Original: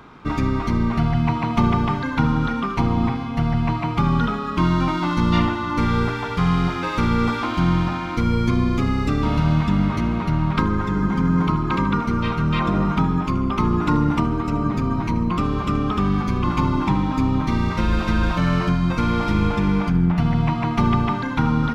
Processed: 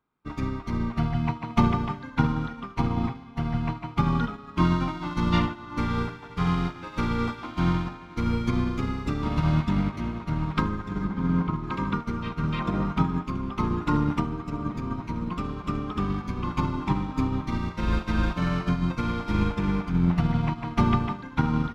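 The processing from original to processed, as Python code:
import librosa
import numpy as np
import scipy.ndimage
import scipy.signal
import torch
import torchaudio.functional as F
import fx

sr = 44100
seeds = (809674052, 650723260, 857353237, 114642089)

y = fx.air_absorb(x, sr, metres=380.0, at=(11.04, 11.64))
y = fx.echo_diffused(y, sr, ms=1428, feedback_pct=68, wet_db=-15.0)
y = fx.upward_expand(y, sr, threshold_db=-38.0, expansion=2.5)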